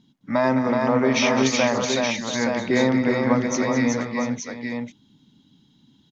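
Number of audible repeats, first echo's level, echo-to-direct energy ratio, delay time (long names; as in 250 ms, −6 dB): 4, −11.0 dB, −0.5 dB, 210 ms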